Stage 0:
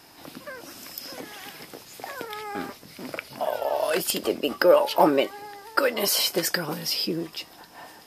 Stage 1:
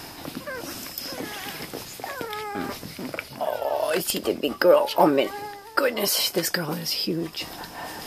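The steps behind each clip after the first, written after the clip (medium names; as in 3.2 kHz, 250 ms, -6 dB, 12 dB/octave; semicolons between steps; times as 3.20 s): reverse; upward compressor, threshold -26 dBFS; reverse; bass shelf 130 Hz +8 dB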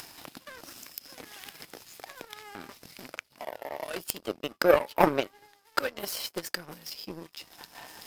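power-law waveshaper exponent 2; upward compressor, threshold -41 dBFS; tape noise reduction on one side only encoder only; trim +2.5 dB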